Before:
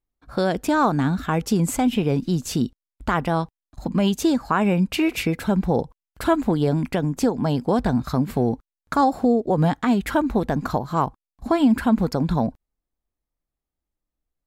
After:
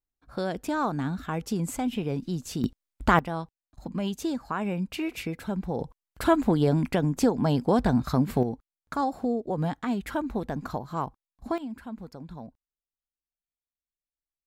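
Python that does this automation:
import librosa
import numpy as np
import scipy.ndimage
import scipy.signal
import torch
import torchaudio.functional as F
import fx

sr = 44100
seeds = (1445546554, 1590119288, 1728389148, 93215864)

y = fx.gain(x, sr, db=fx.steps((0.0, -8.5), (2.64, 2.0), (3.19, -10.0), (5.81, -2.0), (8.43, -9.0), (11.58, -20.0)))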